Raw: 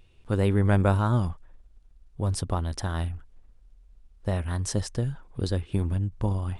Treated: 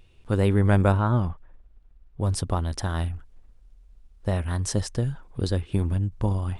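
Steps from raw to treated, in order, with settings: 0.92–2.21 s: tone controls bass -1 dB, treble -14 dB; trim +2 dB

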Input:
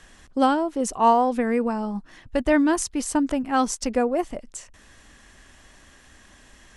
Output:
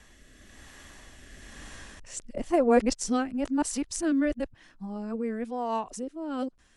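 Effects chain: reverse the whole clip; Doppler pass-by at 1.60 s, 10 m/s, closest 6.9 m; rotary cabinet horn 1 Hz; trim +7 dB

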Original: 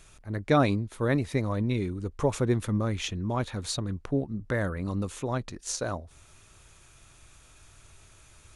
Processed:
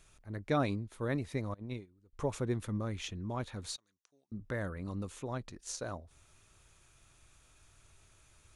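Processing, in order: 1.54–2.13 s: gate -25 dBFS, range -24 dB; 3.76–4.32 s: band-pass filter 6.3 kHz, Q 2.9; trim -8.5 dB

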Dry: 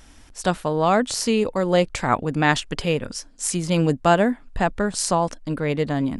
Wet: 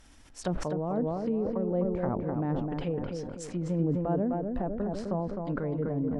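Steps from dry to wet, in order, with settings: low-pass that closes with the level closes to 480 Hz, closed at -18.5 dBFS; tape echo 255 ms, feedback 51%, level -3 dB, low-pass 1.5 kHz; decay stretcher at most 34 dB/s; trim -8.5 dB

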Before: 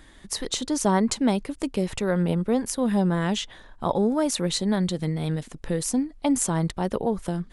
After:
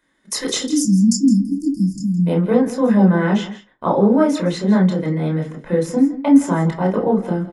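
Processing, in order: gate -40 dBFS, range -20 dB; 0.66–2.27 s: spectral selection erased 330–4500 Hz; treble shelf 3.6 kHz +12 dB, from 1.26 s +3.5 dB, from 2.55 s -5 dB; delay 164 ms -15 dB; reverberation RT60 0.20 s, pre-delay 18 ms, DRR -0.5 dB; trim -5 dB

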